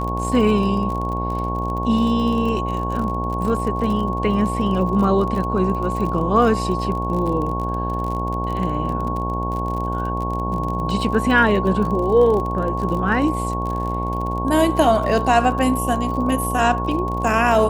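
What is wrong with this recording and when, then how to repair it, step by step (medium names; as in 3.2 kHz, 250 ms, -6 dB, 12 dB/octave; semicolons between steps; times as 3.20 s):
buzz 60 Hz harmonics 17 -25 dBFS
crackle 39 per s -26 dBFS
whine 1.1 kHz -25 dBFS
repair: de-click; band-stop 1.1 kHz, Q 30; de-hum 60 Hz, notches 17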